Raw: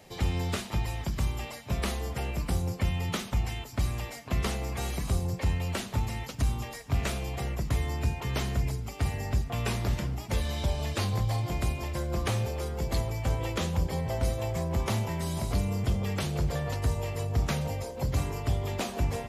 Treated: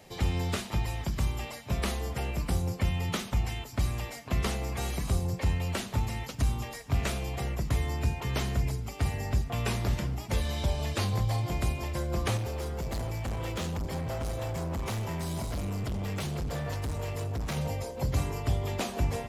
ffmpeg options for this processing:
ffmpeg -i in.wav -filter_complex "[0:a]asettb=1/sr,asplit=3[link_01][link_02][link_03];[link_01]atrim=end=12.374[link_04];[link_02]atrim=start=12.37:end=17.57,asetpts=PTS-STARTPTS,afade=type=in:duration=0.004:curve=qsin,afade=type=out:start_time=5.196:duration=0.004:curve=qsin,asoftclip=type=hard:threshold=-30dB[link_05];[link_03]atrim=start=17.566[link_06];[link_04][link_05]acrossfade=duration=0.004:curve1=hsin:curve2=qsin[link_07];[link_07][link_06]acrossfade=duration=0.004:curve1=qsin:curve2=hsin" out.wav

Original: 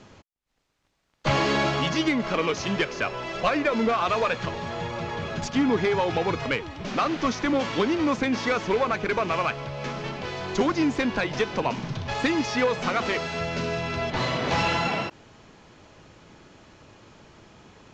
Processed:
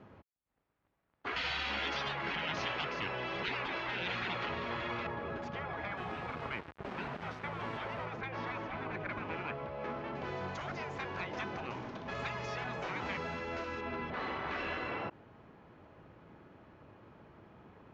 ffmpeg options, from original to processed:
ffmpeg -i in.wav -filter_complex "[0:a]asettb=1/sr,asplit=3[link_01][link_02][link_03];[link_01]atrim=end=1.364[link_04];[link_02]atrim=start=1.36:end=5.07,asetpts=PTS-STARTPTS,afade=type=in:duration=0.004:curve=qsin,afade=type=out:start_time=3.706:duration=0.004:curve=qsin,equalizer=frequency=4000:width=0.31:gain=13[link_05];[link_03]atrim=start=5.066[link_06];[link_04][link_05]acrossfade=duration=0.004:curve1=hsin:curve2=qsin[link_07];[link_07][link_06]acrossfade=duration=0.004:curve1=qsin:curve2=hsin,asettb=1/sr,asplit=3[link_08][link_09][link_10];[link_08]atrim=end=5.974[link_11];[link_09]atrim=start=5.97:end=8.06,asetpts=PTS-STARTPTS,afade=type=in:duration=0.004:curve=qsin,afade=type=out:start_time=2.086:duration=0.004:curve=qsin,aeval=exprs='val(0)*gte(abs(val(0)),0.0282)':channel_layout=same[link_12];[link_10]atrim=start=8.056[link_13];[link_11][link_12]acrossfade=duration=0.004:curve1=hsin:curve2=qsin[link_14];[link_14][link_13]acrossfade=duration=0.004:curve1=qsin:curve2=hsin,asettb=1/sr,asplit=3[link_15][link_16][link_17];[link_15]atrim=end=10.154[link_18];[link_16]atrim=start=10.15:end=13.81,asetpts=PTS-STARTPTS,afade=type=in:duration=0.004:curve=qsin,afade=type=out:start_time=3.656:duration=0.004:curve=qsin,equalizer=frequency=7100:width_type=o:width=1.1:gain=12[link_19];[link_17]atrim=start=13.806[link_20];[link_18][link_19]acrossfade=duration=0.004:curve1=hsin:curve2=qsin[link_21];[link_21][link_20]acrossfade=duration=0.004:curve1=qsin:curve2=hsin,lowpass=1700,afftfilt=real='re*lt(hypot(re,im),0.141)':imag='im*lt(hypot(re,im),0.141)':win_size=1024:overlap=0.75,highpass=51,volume=-5dB" out.wav

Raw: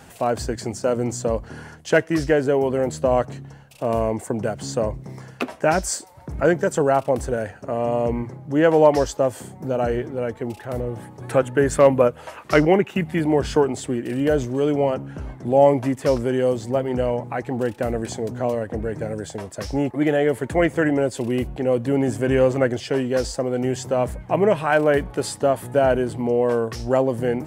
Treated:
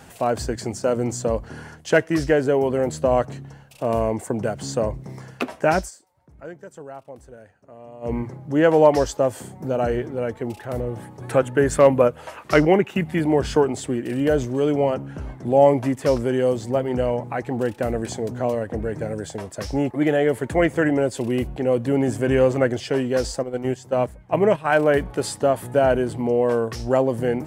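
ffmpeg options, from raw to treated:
ffmpeg -i in.wav -filter_complex "[0:a]asplit=3[link_01][link_02][link_03];[link_01]afade=type=out:start_time=23.39:duration=0.02[link_04];[link_02]agate=range=-11dB:threshold=-23dB:ratio=16:release=100:detection=peak,afade=type=in:start_time=23.39:duration=0.02,afade=type=out:start_time=24.64:duration=0.02[link_05];[link_03]afade=type=in:start_time=24.64:duration=0.02[link_06];[link_04][link_05][link_06]amix=inputs=3:normalize=0,asplit=3[link_07][link_08][link_09];[link_07]atrim=end=5.91,asetpts=PTS-STARTPTS,afade=type=out:start_time=5.79:duration=0.12:silence=0.105925[link_10];[link_08]atrim=start=5.91:end=8.01,asetpts=PTS-STARTPTS,volume=-19.5dB[link_11];[link_09]atrim=start=8.01,asetpts=PTS-STARTPTS,afade=type=in:duration=0.12:silence=0.105925[link_12];[link_10][link_11][link_12]concat=n=3:v=0:a=1" out.wav

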